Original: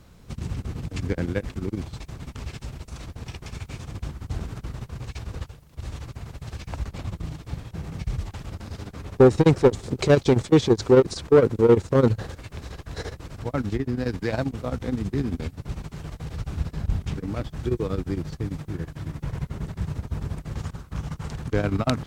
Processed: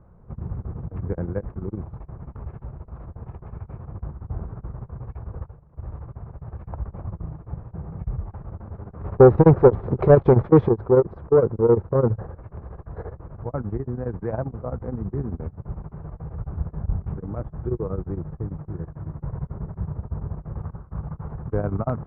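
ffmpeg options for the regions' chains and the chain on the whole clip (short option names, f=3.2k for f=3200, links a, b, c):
-filter_complex "[0:a]asettb=1/sr,asplit=3[a][b][c];[a]atrim=end=9.014[d];[b]atrim=start=9.01:end=10.69,asetpts=PTS-STARTPTS,afade=t=in:d=0.004:c=qsin,afade=t=out:st=1.676:d=0.004:c=qsin,highshelf=f=2.6k:g=11.5,acontrast=55[e];[c]atrim=start=10.686[f];[d][e]acrossfade=d=0.004:c1=hsin:c2=qsin[g];[g][f]acrossfade=d=0.004:c1=qsin:c2=hsin,lowpass=f=1.2k:w=0.5412,lowpass=f=1.2k:w=1.3066,equalizer=f=270:w=4.1:g=-9"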